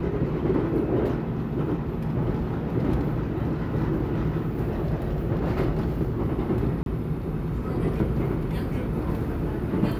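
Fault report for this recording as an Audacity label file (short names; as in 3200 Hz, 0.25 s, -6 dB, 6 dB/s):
6.830000	6.860000	gap 32 ms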